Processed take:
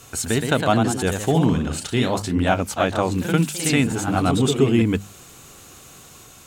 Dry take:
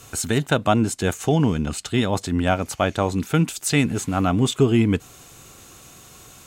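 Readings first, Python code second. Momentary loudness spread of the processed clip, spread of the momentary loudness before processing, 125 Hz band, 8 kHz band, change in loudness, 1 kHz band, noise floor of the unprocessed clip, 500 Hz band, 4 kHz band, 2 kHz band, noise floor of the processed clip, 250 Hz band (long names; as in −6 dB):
5 LU, 5 LU, 0.0 dB, +1.0 dB, +1.0 dB, +1.5 dB, −47 dBFS, +1.0 dB, +1.5 dB, +1.5 dB, −46 dBFS, +1.0 dB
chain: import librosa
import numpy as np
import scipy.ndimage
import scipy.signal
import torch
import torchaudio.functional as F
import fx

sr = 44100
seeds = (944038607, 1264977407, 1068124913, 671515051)

y = fx.hum_notches(x, sr, base_hz=50, count=4)
y = fx.echo_pitch(y, sr, ms=136, semitones=1, count=3, db_per_echo=-6.0)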